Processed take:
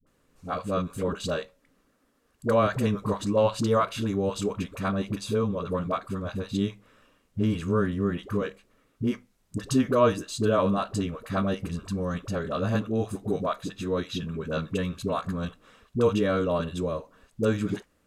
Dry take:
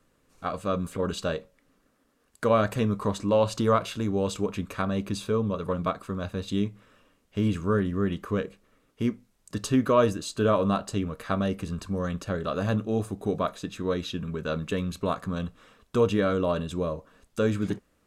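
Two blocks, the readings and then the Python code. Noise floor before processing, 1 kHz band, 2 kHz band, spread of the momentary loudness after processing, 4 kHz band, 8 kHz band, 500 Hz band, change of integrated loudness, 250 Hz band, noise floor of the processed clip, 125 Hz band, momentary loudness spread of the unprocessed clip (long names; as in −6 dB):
−69 dBFS, 0.0 dB, 0.0 dB, 9 LU, 0.0 dB, 0.0 dB, 0.0 dB, 0.0 dB, 0.0 dB, −68 dBFS, 0.0 dB, 10 LU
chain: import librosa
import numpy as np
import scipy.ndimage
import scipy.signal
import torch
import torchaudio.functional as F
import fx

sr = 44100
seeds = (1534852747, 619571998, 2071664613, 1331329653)

y = fx.dispersion(x, sr, late='highs', ms=67.0, hz=480.0)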